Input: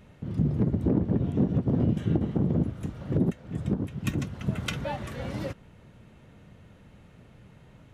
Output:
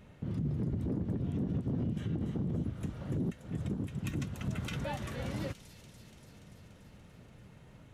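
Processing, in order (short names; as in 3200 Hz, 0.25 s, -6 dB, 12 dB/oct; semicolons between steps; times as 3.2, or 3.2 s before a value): dynamic EQ 630 Hz, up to -4 dB, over -38 dBFS, Q 0.75; limiter -24 dBFS, peak gain reduction 9.5 dB; on a send: thin delay 0.289 s, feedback 71%, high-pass 4800 Hz, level -4.5 dB; on the sum: gain -2.5 dB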